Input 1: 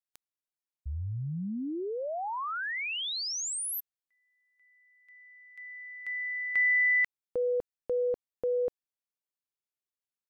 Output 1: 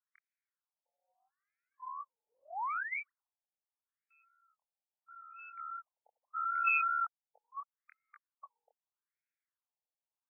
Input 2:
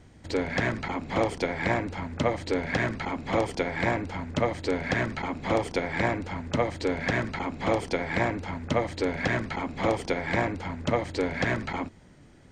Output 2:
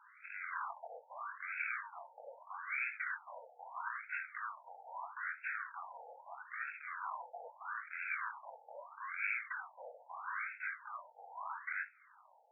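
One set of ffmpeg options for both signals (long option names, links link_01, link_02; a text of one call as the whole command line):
ffmpeg -i in.wav -af "alimiter=limit=-20dB:level=0:latency=1:release=26,acompressor=threshold=-34dB:ratio=4:attack=0.14:release=430:knee=1:detection=rms,highpass=frequency=430:width=0.5412,highpass=frequency=430:width=1.3066,equalizer=frequency=470:width_type=q:width=4:gain=-7,equalizer=frequency=670:width_type=q:width=4:gain=-5,equalizer=frequency=980:width_type=q:width=4:gain=3,equalizer=frequency=1500:width_type=q:width=4:gain=4,equalizer=frequency=2300:width_type=q:width=4:gain=-4,lowpass=frequency=2600:width=0.5412,lowpass=frequency=2600:width=1.3066,aeval=exprs='val(0)*sin(2*PI*630*n/s)':channel_layout=same,crystalizer=i=5.5:c=0,flanger=delay=19:depth=6.9:speed=2.7,afftfilt=real='re*between(b*sr/1024,620*pow(1900/620,0.5+0.5*sin(2*PI*0.78*pts/sr))/1.41,620*pow(1900/620,0.5+0.5*sin(2*PI*0.78*pts/sr))*1.41)':imag='im*between(b*sr/1024,620*pow(1900/620,0.5+0.5*sin(2*PI*0.78*pts/sr))/1.41,620*pow(1900/620,0.5+0.5*sin(2*PI*0.78*pts/sr))*1.41)':win_size=1024:overlap=0.75,volume=8dB" out.wav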